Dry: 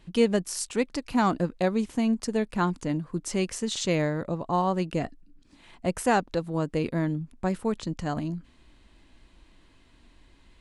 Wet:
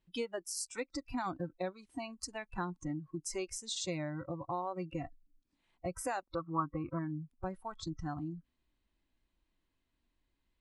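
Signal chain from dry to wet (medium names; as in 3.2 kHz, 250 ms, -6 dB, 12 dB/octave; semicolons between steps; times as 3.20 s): spectral noise reduction 22 dB; compression 3:1, threshold -35 dBFS, peak gain reduction 11.5 dB; 6.35–6.99 s: resonant low-pass 1.2 kHz, resonance Q 14; trim -2 dB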